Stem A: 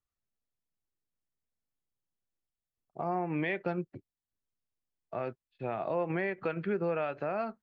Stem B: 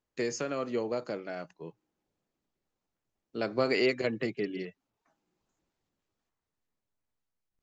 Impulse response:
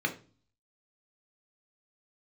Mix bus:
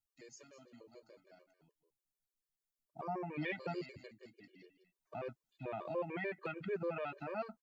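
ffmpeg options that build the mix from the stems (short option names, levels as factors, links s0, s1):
-filter_complex "[0:a]volume=0.562[s0];[1:a]flanger=delay=6.6:depth=2:regen=72:speed=0.55:shape=triangular,volume=0.422,afade=t=in:st=4.49:d=0.68:silence=0.266073,asplit=2[s1][s2];[s2]volume=0.251,aecho=0:1:205:1[s3];[s0][s1][s3]amix=inputs=3:normalize=0,highshelf=f=3700:g=10.5,afftfilt=real='re*gt(sin(2*PI*6.8*pts/sr)*(1-2*mod(floor(b*sr/1024/310),2)),0)':imag='im*gt(sin(2*PI*6.8*pts/sr)*(1-2*mod(floor(b*sr/1024/310),2)),0)':win_size=1024:overlap=0.75"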